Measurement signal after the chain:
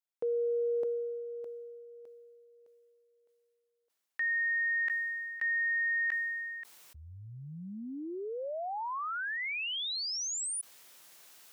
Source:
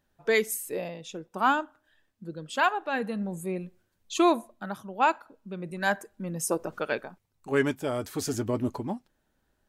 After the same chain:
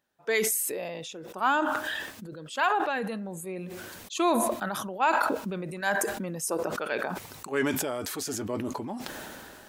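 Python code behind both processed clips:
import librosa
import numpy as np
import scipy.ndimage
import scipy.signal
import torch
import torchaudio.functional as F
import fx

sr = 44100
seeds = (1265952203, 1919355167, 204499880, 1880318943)

y = fx.highpass(x, sr, hz=380.0, slope=6)
y = fx.sustainer(y, sr, db_per_s=23.0)
y = y * 10.0 ** (-1.5 / 20.0)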